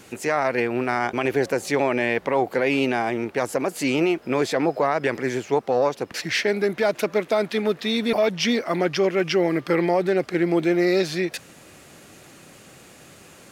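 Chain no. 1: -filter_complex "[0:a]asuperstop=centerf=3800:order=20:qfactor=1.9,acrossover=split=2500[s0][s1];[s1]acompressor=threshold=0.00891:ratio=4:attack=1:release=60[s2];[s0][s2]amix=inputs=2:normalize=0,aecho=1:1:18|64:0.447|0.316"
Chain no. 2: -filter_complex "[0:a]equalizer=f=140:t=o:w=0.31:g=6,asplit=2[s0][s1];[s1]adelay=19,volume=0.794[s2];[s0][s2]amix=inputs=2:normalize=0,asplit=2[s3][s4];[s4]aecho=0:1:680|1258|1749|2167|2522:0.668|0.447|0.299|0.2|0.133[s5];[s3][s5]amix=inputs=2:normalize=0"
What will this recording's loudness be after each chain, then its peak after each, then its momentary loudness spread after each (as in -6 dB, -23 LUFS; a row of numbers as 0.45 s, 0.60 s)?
-22.0 LUFS, -18.5 LUFS; -7.0 dBFS, -4.5 dBFS; 5 LU, 6 LU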